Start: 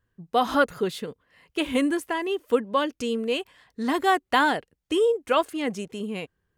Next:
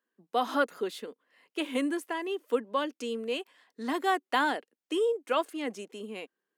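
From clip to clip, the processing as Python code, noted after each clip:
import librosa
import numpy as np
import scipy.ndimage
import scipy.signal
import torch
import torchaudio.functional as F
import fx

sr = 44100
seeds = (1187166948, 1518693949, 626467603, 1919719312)

y = scipy.signal.sosfilt(scipy.signal.butter(6, 230.0, 'highpass', fs=sr, output='sos'), x)
y = y * 10.0 ** (-6.0 / 20.0)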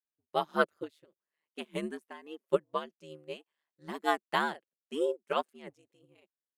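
y = x * np.sin(2.0 * np.pi * 76.0 * np.arange(len(x)) / sr)
y = fx.upward_expand(y, sr, threshold_db=-42.0, expansion=2.5)
y = y * 10.0 ** (4.5 / 20.0)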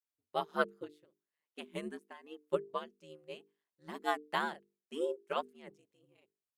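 y = fx.hum_notches(x, sr, base_hz=50, count=9)
y = y * 10.0 ** (-4.5 / 20.0)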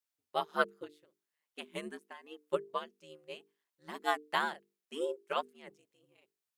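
y = fx.low_shelf(x, sr, hz=480.0, db=-7.5)
y = y * 10.0 ** (3.5 / 20.0)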